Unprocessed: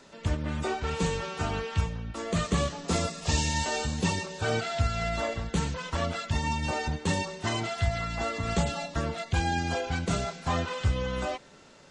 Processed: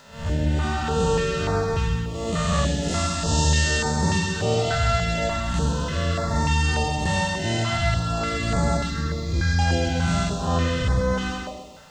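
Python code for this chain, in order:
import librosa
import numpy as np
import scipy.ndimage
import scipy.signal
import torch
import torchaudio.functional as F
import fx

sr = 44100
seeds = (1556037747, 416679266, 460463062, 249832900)

y = fx.spec_blur(x, sr, span_ms=163.0)
y = fx.notch(y, sr, hz=2300.0, q=10.0)
y = fx.hpss(y, sr, part='harmonic', gain_db=6)
y = fx.fixed_phaser(y, sr, hz=2900.0, stages=6, at=(8.77, 9.59))
y = fx.quant_dither(y, sr, seeds[0], bits=12, dither='triangular')
y = fx.echo_feedback(y, sr, ms=130, feedback_pct=41, wet_db=-4)
y = fx.filter_held_notch(y, sr, hz=3.4, low_hz=330.0, high_hz=2900.0)
y = y * librosa.db_to_amplitude(3.5)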